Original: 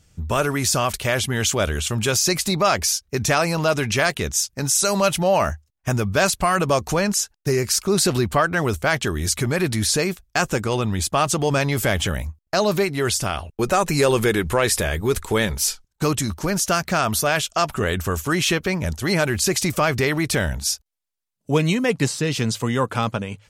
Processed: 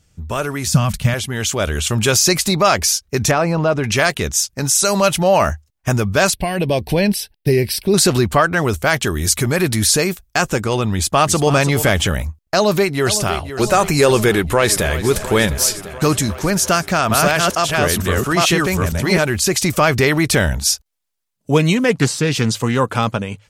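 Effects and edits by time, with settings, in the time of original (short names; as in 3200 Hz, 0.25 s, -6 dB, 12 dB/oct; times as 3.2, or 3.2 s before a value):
0.67–1.14 resonant low shelf 260 Hz +10.5 dB, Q 3
3.31–3.84 LPF 1000 Hz 6 dB/oct
6.34–7.94 fixed phaser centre 3000 Hz, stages 4
8.81–10.37 high shelf 11000 Hz +9 dB
10.94–11.56 echo throw 0.33 s, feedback 10%, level -11.5 dB
12.55–13.52 echo throw 0.51 s, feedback 75%, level -11.5 dB
14.33–14.93 echo throw 0.35 s, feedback 80%, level -13.5 dB
16.64–19.23 reverse delay 0.456 s, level 0 dB
21.77–22.8 Doppler distortion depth 0.17 ms
whole clip: AGC; gain -1 dB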